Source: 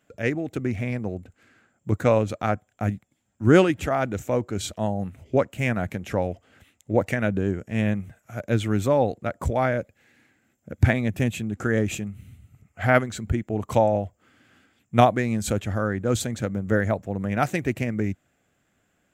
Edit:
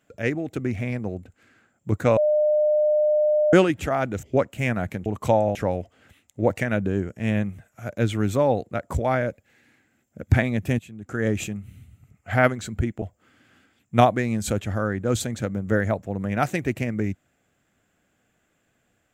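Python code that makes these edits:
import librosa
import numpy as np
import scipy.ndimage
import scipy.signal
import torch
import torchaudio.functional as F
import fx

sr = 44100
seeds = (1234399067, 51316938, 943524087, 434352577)

y = fx.edit(x, sr, fx.bleep(start_s=2.17, length_s=1.36, hz=604.0, db=-16.5),
    fx.cut(start_s=4.23, length_s=1.0),
    fx.fade_in_from(start_s=11.3, length_s=0.5, curve='qua', floor_db=-14.0),
    fx.move(start_s=13.53, length_s=0.49, to_s=6.06), tone=tone)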